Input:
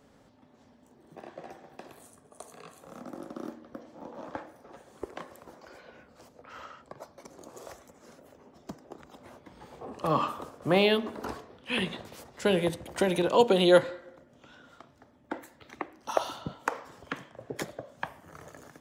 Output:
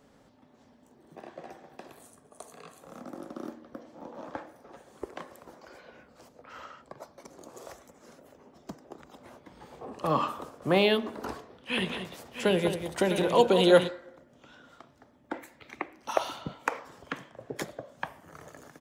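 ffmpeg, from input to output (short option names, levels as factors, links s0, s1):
-filter_complex "[0:a]asplit=3[s0][s1][s2];[s0]afade=t=out:st=11.77:d=0.02[s3];[s1]aecho=1:1:192|655:0.355|0.335,afade=t=in:st=11.77:d=0.02,afade=t=out:st=13.87:d=0.02[s4];[s2]afade=t=in:st=13.87:d=0.02[s5];[s3][s4][s5]amix=inputs=3:normalize=0,asettb=1/sr,asplit=3[s6][s7][s8];[s6]atrim=end=15.344[s9];[s7]atrim=start=15.34:end=16.79,asetpts=PTS-STARTPTS,afade=t=in:d=0.004:c=qsin,afade=t=out:st=1.446:d=0.004:c=qsin,equalizer=f=2300:t=o:w=0.39:g=8[s10];[s8]atrim=start=16.786[s11];[s9][s10]acrossfade=d=0.004:c1=hsin:c2=qsin[s12];[s12][s11]acrossfade=d=0.004:c1=qsin:c2=hsin,equalizer=f=88:t=o:w=0.77:g=-3"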